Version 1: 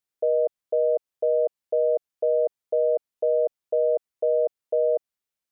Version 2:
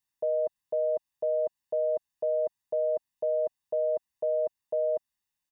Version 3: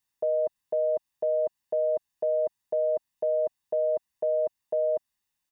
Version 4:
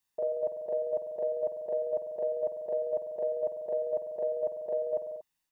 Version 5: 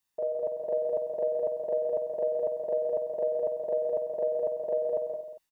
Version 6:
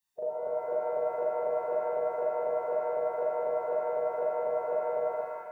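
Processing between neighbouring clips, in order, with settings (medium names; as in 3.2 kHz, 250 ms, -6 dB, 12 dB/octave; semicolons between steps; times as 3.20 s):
peaking EQ 700 Hz -8.5 dB 0.23 oct; comb 1.1 ms, depth 72%
dynamic bell 510 Hz, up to -3 dB, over -40 dBFS, Q 2.4; trim +3.5 dB
reverse echo 41 ms -4.5 dB; on a send at -6 dB: reverberation, pre-delay 47 ms; on the sum: trim -1.5 dB
level rider gain up to 3.5 dB; delay 167 ms -7 dB
coarse spectral quantiser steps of 15 dB; pitch-shifted reverb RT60 1.7 s, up +7 st, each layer -8 dB, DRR -2.5 dB; trim -4 dB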